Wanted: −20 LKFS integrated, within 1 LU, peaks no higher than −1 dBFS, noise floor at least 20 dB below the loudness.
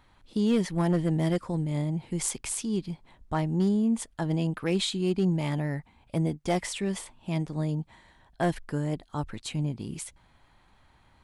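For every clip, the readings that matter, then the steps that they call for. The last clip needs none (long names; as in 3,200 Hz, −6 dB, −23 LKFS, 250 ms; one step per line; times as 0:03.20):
share of clipped samples 0.3%; peaks flattened at −17.5 dBFS; integrated loudness −29.5 LKFS; sample peak −17.5 dBFS; target loudness −20.0 LKFS
→ clipped peaks rebuilt −17.5 dBFS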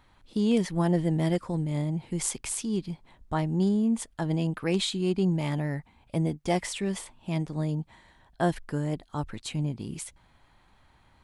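share of clipped samples 0.0%; integrated loudness −29.0 LKFS; sample peak −12.0 dBFS; target loudness −20.0 LKFS
→ level +9 dB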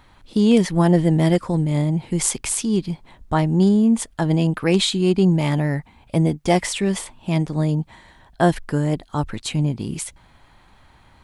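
integrated loudness −20.0 LKFS; sample peak −3.0 dBFS; background noise floor −53 dBFS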